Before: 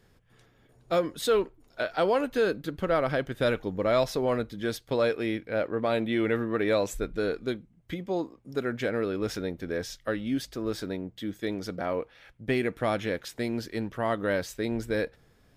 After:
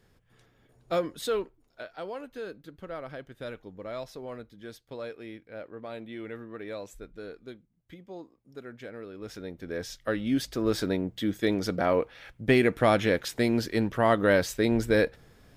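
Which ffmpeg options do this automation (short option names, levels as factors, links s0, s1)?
-af "volume=6.68,afade=t=out:st=0.99:d=0.92:silence=0.281838,afade=t=in:st=9.13:d=0.48:silence=0.398107,afade=t=in:st=9.61:d=1.23:silence=0.298538"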